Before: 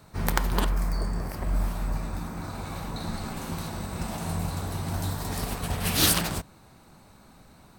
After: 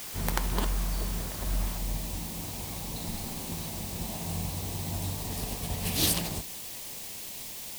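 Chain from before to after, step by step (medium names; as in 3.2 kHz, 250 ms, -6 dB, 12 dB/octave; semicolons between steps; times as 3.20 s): word length cut 6-bit, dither triangular; peaking EQ 1.4 kHz -3 dB 0.66 oct, from 1.78 s -12 dB; trim -4 dB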